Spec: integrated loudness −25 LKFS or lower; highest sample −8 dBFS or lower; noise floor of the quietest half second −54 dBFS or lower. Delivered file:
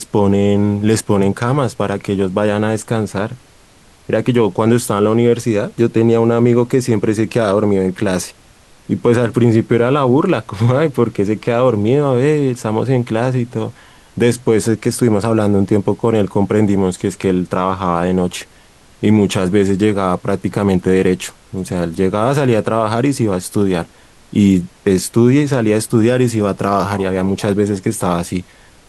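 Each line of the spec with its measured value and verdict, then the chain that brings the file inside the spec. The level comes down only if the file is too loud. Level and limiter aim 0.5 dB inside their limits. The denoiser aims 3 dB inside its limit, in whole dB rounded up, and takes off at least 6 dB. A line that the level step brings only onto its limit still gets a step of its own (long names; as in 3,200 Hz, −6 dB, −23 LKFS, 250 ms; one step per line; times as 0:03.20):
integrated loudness −15.5 LKFS: out of spec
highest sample −2.0 dBFS: out of spec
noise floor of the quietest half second −46 dBFS: out of spec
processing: level −10 dB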